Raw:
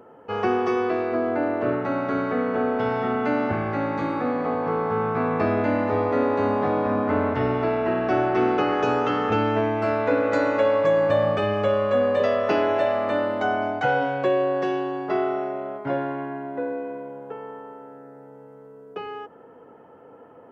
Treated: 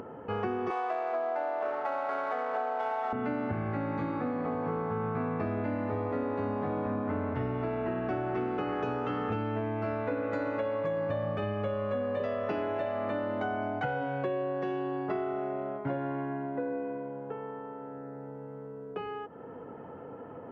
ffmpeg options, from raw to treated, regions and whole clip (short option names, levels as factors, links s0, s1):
-filter_complex "[0:a]asettb=1/sr,asplit=3[s0][s1][s2];[s0]atrim=end=0.704[s3];[s1]atrim=start=0.7:end=3.13,asetpts=PTS-STARTPTS,afade=t=in:d=0.004:c=qsin,afade=t=out:st=2.426:d=0.004:c=qsin,highshelf=f=3900:g=11,adynamicsmooth=sensitivity=5.5:basefreq=1600,highpass=f=740:t=q:w=3.1[s4];[s2]atrim=start=3.126[s5];[s3][s4]acrossfade=d=0.004:c1=hsin:c2=qsin[s6];[s6][s5]acrossfade=d=0.004:c1=qsin:c2=hsin,acompressor=mode=upward:threshold=0.0224:ratio=2.5,bass=f=250:g=7,treble=f=4000:g=-10,acompressor=threshold=0.0562:ratio=6,volume=0.631"